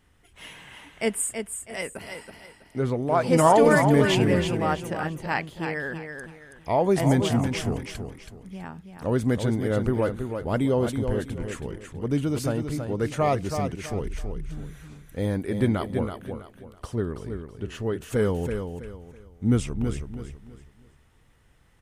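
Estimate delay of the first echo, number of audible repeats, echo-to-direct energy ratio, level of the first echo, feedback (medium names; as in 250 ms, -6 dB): 326 ms, 3, -6.5 dB, -7.0 dB, 30%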